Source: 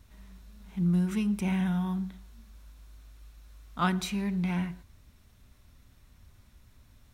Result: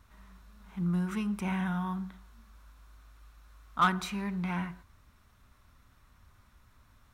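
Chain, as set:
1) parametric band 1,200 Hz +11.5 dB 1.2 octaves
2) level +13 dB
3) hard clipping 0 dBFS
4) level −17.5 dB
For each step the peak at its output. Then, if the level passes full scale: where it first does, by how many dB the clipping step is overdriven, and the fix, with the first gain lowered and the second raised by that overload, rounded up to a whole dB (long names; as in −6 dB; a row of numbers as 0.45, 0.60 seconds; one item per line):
−7.5, +5.5, 0.0, −17.5 dBFS
step 2, 5.5 dB
step 2 +7 dB, step 4 −11.5 dB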